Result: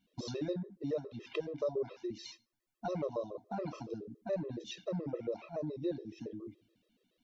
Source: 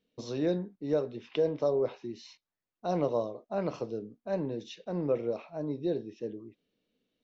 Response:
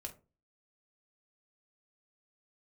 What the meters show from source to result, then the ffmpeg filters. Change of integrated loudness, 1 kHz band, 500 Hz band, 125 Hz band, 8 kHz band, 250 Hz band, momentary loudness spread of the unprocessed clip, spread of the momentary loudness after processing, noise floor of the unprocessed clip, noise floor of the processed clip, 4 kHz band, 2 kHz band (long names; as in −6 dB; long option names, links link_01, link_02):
−6.5 dB, −6.0 dB, −7.0 dB, −5.0 dB, can't be measured, −6.0 dB, 11 LU, 9 LU, below −85 dBFS, −81 dBFS, −1.5 dB, −4.0 dB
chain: -filter_complex "[0:a]acompressor=threshold=-40dB:ratio=3,asplit=2[link_01][link_02];[1:a]atrim=start_sample=2205,asetrate=24255,aresample=44100,highshelf=frequency=4700:gain=10[link_03];[link_02][link_03]afir=irnorm=-1:irlink=0,volume=-16.5dB[link_04];[link_01][link_04]amix=inputs=2:normalize=0,afftfilt=real='re*gt(sin(2*PI*7.1*pts/sr)*(1-2*mod(floor(b*sr/1024/340),2)),0)':imag='im*gt(sin(2*PI*7.1*pts/sr)*(1-2*mod(floor(b*sr/1024/340),2)),0)':win_size=1024:overlap=0.75,volume=5dB"